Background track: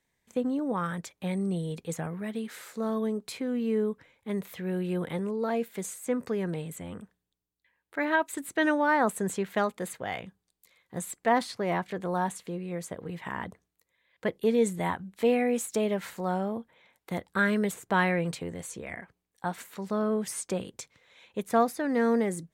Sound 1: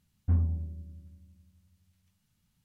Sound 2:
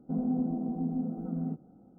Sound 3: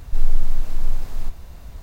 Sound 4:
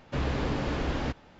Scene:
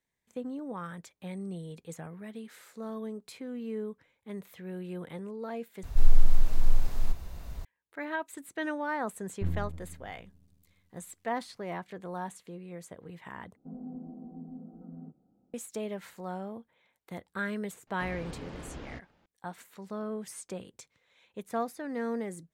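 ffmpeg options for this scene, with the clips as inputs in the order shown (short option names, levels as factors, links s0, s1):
-filter_complex "[0:a]volume=0.376[s0];[1:a]aeval=exprs='max(val(0),0)':c=same[s1];[s0]asplit=3[s2][s3][s4];[s2]atrim=end=5.834[s5];[3:a]atrim=end=1.82,asetpts=PTS-STARTPTS,volume=0.75[s6];[s3]atrim=start=7.646:end=13.564[s7];[2:a]atrim=end=1.98,asetpts=PTS-STARTPTS,volume=0.237[s8];[s4]atrim=start=15.536[s9];[s1]atrim=end=2.64,asetpts=PTS-STARTPTS,volume=0.794,afade=t=in:d=0.004:c=hsin,afade=t=out:st=2.636:d=0.004:c=hsin,adelay=9130[s10];[4:a]atrim=end=1.39,asetpts=PTS-STARTPTS,volume=0.211,afade=t=in:d=0.004:c=hsin,afade=t=out:st=1.386:d=0.004:c=hsin,adelay=17870[s11];[s5][s6]acrossfade=d=0.004:c1=hsin:c2=hsin[s12];[s12][s7]acrossfade=d=0.004:c1=hsin:c2=hsin[s13];[s13][s8]acrossfade=d=0.004:c1=hsin:c2=hsin[s14];[s14][s9]acrossfade=d=0.004:c1=hsin:c2=hsin[s15];[s15][s10][s11]amix=inputs=3:normalize=0"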